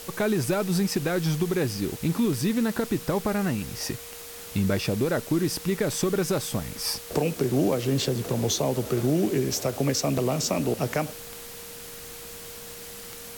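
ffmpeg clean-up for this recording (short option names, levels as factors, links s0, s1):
-af "adeclick=t=4,bandreject=f=470:w=30,afwtdn=0.0089"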